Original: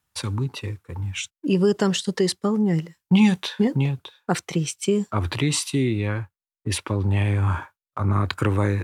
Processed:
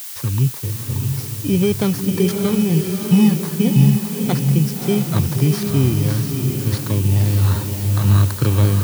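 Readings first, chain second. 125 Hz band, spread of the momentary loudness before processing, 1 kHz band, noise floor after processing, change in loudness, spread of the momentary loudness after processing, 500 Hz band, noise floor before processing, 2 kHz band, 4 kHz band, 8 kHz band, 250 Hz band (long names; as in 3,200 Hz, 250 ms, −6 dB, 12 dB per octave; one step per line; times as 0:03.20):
+8.5 dB, 11 LU, −0.5 dB, −29 dBFS, +6.0 dB, 7 LU, +2.0 dB, below −85 dBFS, −1.5 dB, +0.5 dB, +3.5 dB, +5.0 dB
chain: samples in bit-reversed order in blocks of 16 samples
low-pass filter 7,100 Hz
parametric band 130 Hz +10.5 dB 0.84 octaves
on a send: feedback delay with all-pass diffusion 627 ms, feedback 45%, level −4 dB
on the sum: background noise blue −32 dBFS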